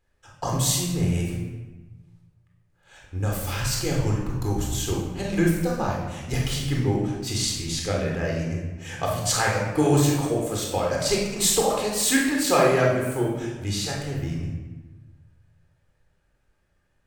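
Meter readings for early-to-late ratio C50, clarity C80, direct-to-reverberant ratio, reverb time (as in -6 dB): 2.0 dB, 5.0 dB, -2.5 dB, 1.2 s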